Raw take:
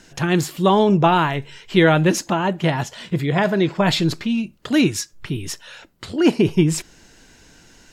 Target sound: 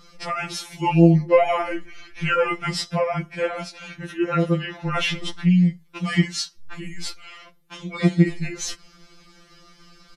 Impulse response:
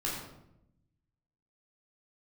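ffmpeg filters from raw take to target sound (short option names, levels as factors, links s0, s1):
-af "asetrate=34398,aresample=44100,afftfilt=real='re*2.83*eq(mod(b,8),0)':imag='im*2.83*eq(mod(b,8),0)':win_size=2048:overlap=0.75"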